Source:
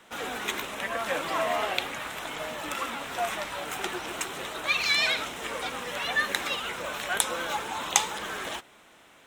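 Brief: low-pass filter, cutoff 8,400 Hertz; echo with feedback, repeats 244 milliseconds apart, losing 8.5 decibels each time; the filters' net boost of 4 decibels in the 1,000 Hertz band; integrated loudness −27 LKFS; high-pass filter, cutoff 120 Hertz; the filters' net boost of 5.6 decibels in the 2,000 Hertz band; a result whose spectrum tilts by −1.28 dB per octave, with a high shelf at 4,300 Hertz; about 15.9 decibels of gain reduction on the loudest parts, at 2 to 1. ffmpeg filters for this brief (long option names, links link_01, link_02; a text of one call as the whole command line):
ffmpeg -i in.wav -af "highpass=120,lowpass=8400,equalizer=frequency=1000:width_type=o:gain=3.5,equalizer=frequency=2000:width_type=o:gain=7,highshelf=frequency=4300:gain=-5,acompressor=threshold=-46dB:ratio=2,aecho=1:1:244|488|732|976:0.376|0.143|0.0543|0.0206,volume=10.5dB" out.wav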